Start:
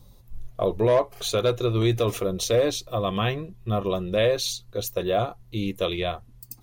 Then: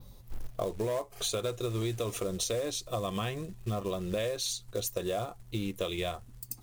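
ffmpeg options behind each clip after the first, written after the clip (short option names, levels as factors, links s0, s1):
-af "acrusher=bits=5:mode=log:mix=0:aa=0.000001,adynamicequalizer=threshold=0.00447:dfrequency=8200:dqfactor=1.3:tfrequency=8200:tqfactor=1.3:attack=5:release=100:ratio=0.375:range=3.5:mode=boostabove:tftype=bell,acompressor=threshold=0.0316:ratio=6"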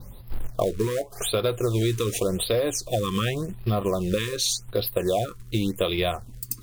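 -af "afftfilt=real='re*(1-between(b*sr/1024,660*pow(7700/660,0.5+0.5*sin(2*PI*0.88*pts/sr))/1.41,660*pow(7700/660,0.5+0.5*sin(2*PI*0.88*pts/sr))*1.41))':imag='im*(1-between(b*sr/1024,660*pow(7700/660,0.5+0.5*sin(2*PI*0.88*pts/sr))/1.41,660*pow(7700/660,0.5+0.5*sin(2*PI*0.88*pts/sr))*1.41))':win_size=1024:overlap=0.75,volume=2.82"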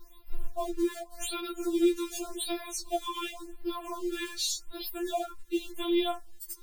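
-af "afftfilt=real='re*4*eq(mod(b,16),0)':imag='im*4*eq(mod(b,16),0)':win_size=2048:overlap=0.75,volume=0.596"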